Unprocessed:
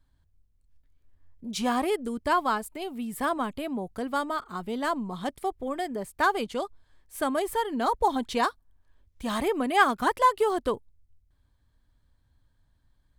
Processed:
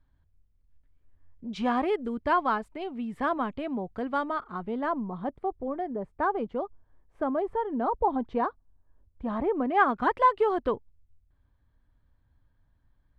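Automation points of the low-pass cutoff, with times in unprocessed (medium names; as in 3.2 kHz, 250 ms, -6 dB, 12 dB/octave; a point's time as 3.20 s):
4.24 s 2.5 kHz
5.36 s 1 kHz
9.51 s 1 kHz
10.10 s 2.3 kHz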